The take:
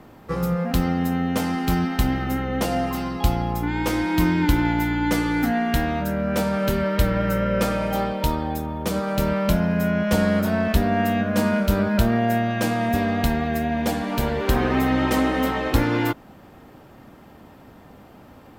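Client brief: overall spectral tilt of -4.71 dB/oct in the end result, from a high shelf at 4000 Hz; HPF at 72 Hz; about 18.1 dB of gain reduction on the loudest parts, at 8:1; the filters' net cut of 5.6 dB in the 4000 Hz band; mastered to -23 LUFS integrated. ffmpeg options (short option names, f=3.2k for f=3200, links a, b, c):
-af "highpass=72,highshelf=f=4k:g=-7,equalizer=f=4k:t=o:g=-3.5,acompressor=threshold=-36dB:ratio=8,volume=16.5dB"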